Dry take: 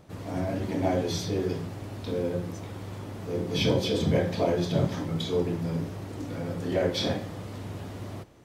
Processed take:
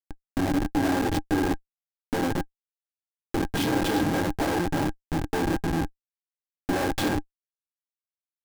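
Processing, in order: Chebyshev shaper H 4 -37 dB, 6 -34 dB, 7 -27 dB, 8 -11 dB, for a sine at -12 dBFS; Schmitt trigger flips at -29.5 dBFS; small resonant body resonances 300/810/1600 Hz, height 13 dB, ringing for 55 ms

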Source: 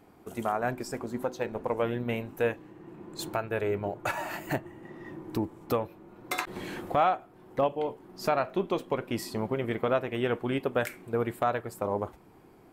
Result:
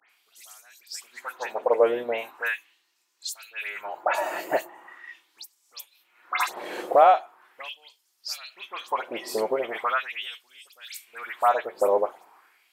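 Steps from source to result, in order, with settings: phase dispersion highs, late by 99 ms, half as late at 2.9 kHz; LFO high-pass sine 0.4 Hz 480–5600 Hz; trim +3.5 dB

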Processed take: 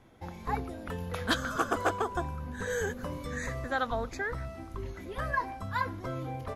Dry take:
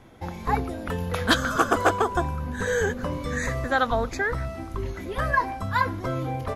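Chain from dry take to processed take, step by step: 2.70–3.27 s: treble shelf 9.1 kHz +10 dB; trim -8 dB

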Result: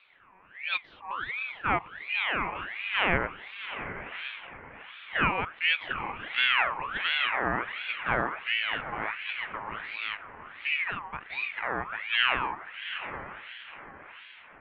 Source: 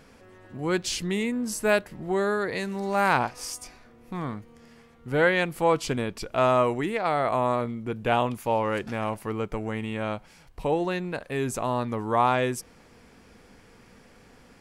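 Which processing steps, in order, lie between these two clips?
dynamic bell 1.3 kHz, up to +5 dB, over -38 dBFS, Q 2.1; echo that smears into a reverb 760 ms, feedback 43%, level -10 dB; mistuned SSB -350 Hz 210–2000 Hz; ring modulator with a swept carrier 1.7 kHz, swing 45%, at 1.4 Hz; trim -2.5 dB

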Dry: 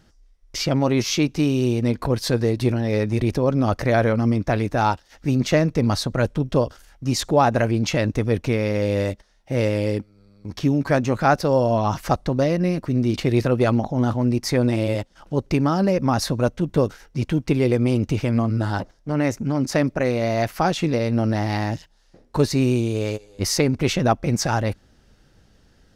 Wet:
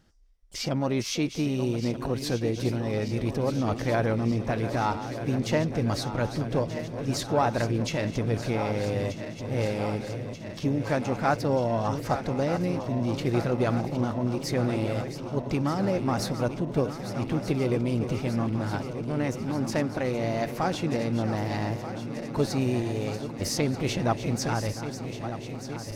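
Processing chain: backward echo that repeats 617 ms, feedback 84%, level -11 dB; harmony voices +7 st -15 dB; trim -7.5 dB

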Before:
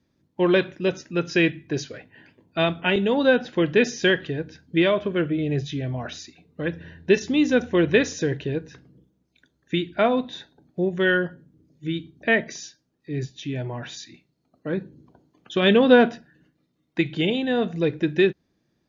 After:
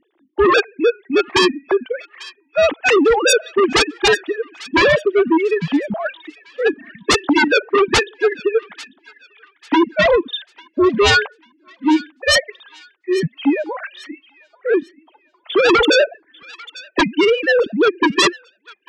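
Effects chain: formants replaced by sine waves; reverb removal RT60 2 s; sine folder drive 19 dB, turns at -2 dBFS; on a send: feedback echo behind a high-pass 844 ms, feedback 31%, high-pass 1.8 kHz, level -17 dB; on the sum: trim -7 dB

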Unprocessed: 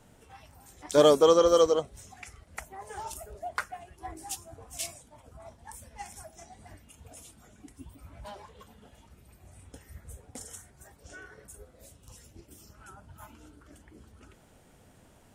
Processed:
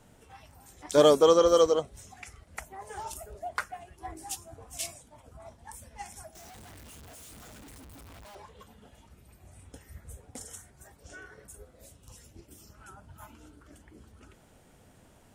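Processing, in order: 6.35–8.35 s: one-bit comparator

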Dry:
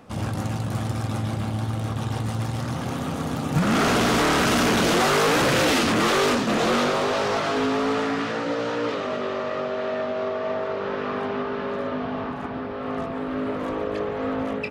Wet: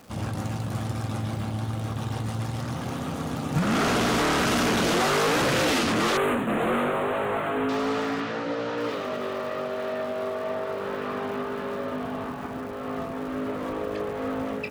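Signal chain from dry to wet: crackle 530 per s -39 dBFS; 6.17–7.69 s: Butterworth band-stop 5.2 kHz, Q 0.77; 8.20–8.78 s: distance through air 65 m; trim -3 dB

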